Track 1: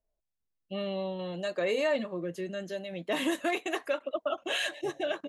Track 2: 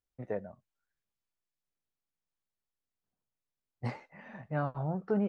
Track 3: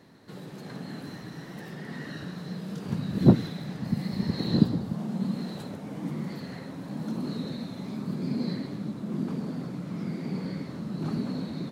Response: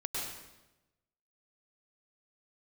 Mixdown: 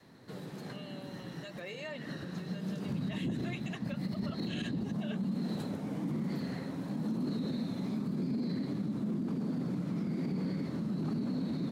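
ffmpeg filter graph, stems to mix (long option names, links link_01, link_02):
-filter_complex "[0:a]lowpass=6500,tiltshelf=frequency=1200:gain=-5.5,volume=-13dB,asplit=2[link_01][link_02];[1:a]volume=-18.5dB[link_03];[2:a]adynamicequalizer=threshold=0.0126:dfrequency=240:dqfactor=0.97:tfrequency=240:tqfactor=0.97:attack=5:release=100:ratio=0.375:range=3:mode=boostabove:tftype=bell,volume=-2.5dB,asplit=2[link_04][link_05];[link_05]volume=-21dB[link_06];[link_02]apad=whole_len=516521[link_07];[link_04][link_07]sidechaincompress=threshold=-52dB:ratio=8:attack=12:release=141[link_08];[3:a]atrim=start_sample=2205[link_09];[link_06][link_09]afir=irnorm=-1:irlink=0[link_10];[link_01][link_03][link_08][link_10]amix=inputs=4:normalize=0,alimiter=level_in=3.5dB:limit=-24dB:level=0:latency=1:release=43,volume=-3.5dB"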